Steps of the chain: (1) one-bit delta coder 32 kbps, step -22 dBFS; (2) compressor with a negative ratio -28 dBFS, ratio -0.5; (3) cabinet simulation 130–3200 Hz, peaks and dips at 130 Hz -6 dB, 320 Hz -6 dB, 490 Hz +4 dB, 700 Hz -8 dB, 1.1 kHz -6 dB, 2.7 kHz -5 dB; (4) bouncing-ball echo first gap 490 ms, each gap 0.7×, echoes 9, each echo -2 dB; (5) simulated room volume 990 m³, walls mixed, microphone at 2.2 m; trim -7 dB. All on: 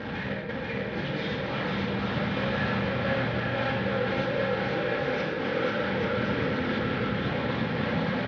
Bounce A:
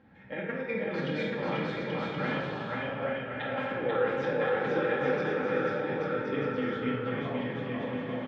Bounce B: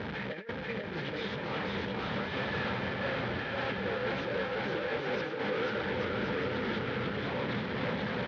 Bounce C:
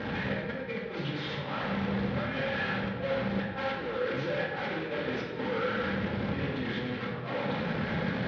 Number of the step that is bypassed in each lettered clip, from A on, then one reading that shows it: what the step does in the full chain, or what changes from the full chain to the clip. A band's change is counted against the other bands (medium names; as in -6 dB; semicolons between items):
1, 4 kHz band -4.5 dB; 5, echo-to-direct 8.0 dB to 2.5 dB; 4, echo-to-direct 8.0 dB to 2.5 dB